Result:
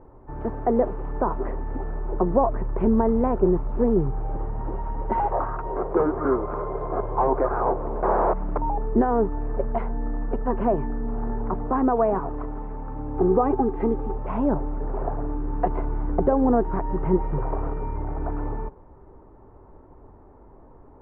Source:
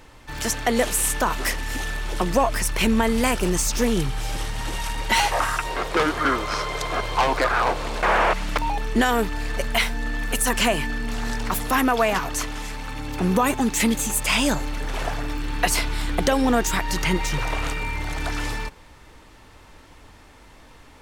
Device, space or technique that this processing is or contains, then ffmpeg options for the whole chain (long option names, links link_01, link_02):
under water: -filter_complex "[0:a]lowpass=frequency=1000:width=0.5412,lowpass=frequency=1000:width=1.3066,equalizer=frequency=390:width_type=o:width=0.22:gain=9.5,asettb=1/sr,asplit=3[link_01][link_02][link_03];[link_01]atrim=end=13.164[link_04];[link_02]atrim=start=13.16:end=14.18,asetpts=PTS-STARTPTS,afade=type=in:duration=0.004:curve=qsin,afade=type=out:start_time=1.016:duration=0.004:curve=qsin,aecho=1:1:2.5:0.55,atrim=end_sample=44982[link_05];[link_03]atrim=start=14.176[link_06];[link_04][link_05]acrossfade=duration=0.004:curve1=hsin:curve2=qsin[link_07];[link_07][link_06]acrossfade=duration=0.004:curve1=qsin:curve2=hsin"